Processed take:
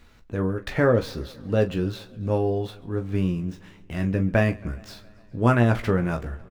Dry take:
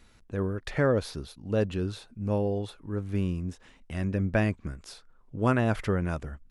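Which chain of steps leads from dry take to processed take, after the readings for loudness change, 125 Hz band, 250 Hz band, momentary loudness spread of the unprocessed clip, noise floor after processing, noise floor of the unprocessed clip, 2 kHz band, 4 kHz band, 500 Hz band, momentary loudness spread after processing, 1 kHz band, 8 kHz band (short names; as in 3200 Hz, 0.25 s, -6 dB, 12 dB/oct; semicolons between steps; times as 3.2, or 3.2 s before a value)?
+5.0 dB, +5.0 dB, +4.5 dB, 14 LU, -52 dBFS, -58 dBFS, +5.0 dB, +3.5 dB, +5.0 dB, 14 LU, +5.0 dB, n/a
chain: median filter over 5 samples; early reflections 17 ms -6.5 dB, 42 ms -13.5 dB; warbling echo 0.138 s, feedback 72%, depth 86 cents, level -24 dB; gain +4 dB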